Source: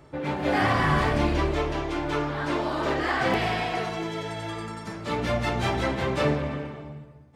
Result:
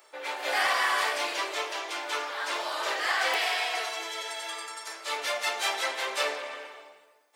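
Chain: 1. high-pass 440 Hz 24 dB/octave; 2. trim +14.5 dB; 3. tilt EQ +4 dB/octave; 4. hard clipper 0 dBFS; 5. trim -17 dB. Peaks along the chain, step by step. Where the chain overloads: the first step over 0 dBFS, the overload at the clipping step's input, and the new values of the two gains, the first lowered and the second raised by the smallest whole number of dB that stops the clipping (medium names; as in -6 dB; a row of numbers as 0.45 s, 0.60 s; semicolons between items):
-12.5 dBFS, +2.0 dBFS, +5.5 dBFS, 0.0 dBFS, -17.0 dBFS; step 2, 5.5 dB; step 2 +8.5 dB, step 5 -11 dB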